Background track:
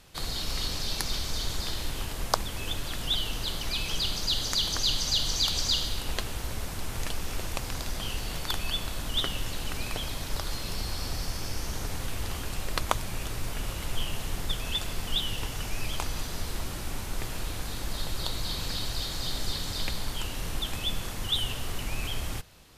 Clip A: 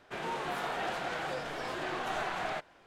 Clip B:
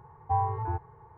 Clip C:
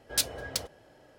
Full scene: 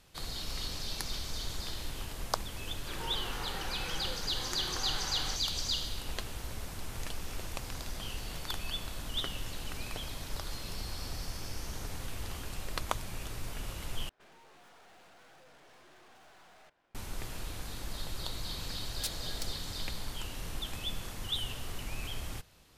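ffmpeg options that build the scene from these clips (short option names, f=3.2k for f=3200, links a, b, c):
-filter_complex "[1:a]asplit=2[a][b];[0:a]volume=-6.5dB[c];[a]asuperstop=centerf=660:order=4:qfactor=3.9[d];[b]aeval=exprs='(tanh(282*val(0)+0.8)-tanh(0.8))/282':c=same[e];[c]asplit=2[f][g];[f]atrim=end=14.094[h];[e]atrim=end=2.86,asetpts=PTS-STARTPTS,volume=-9dB[i];[g]atrim=start=16.946[j];[d]atrim=end=2.86,asetpts=PTS-STARTPTS,volume=-6dB,afade=t=in:d=0.004:c=hsin,afade=t=out:st=2.856:d=0.004:c=hsin,adelay=2760[k];[3:a]atrim=end=1.18,asetpts=PTS-STARTPTS,volume=-11dB,afade=t=in:d=0.004:c=hsin,afade=t=out:st=1.176:d=0.004:c=hsin,adelay=18860[l];[h][i]acrossfade=d=0.004:c1=hsin:c2=hsin[m];[m][j]acrossfade=d=0.004:c1=hsin:c2=hsin[n];[n][k][l]amix=inputs=3:normalize=0"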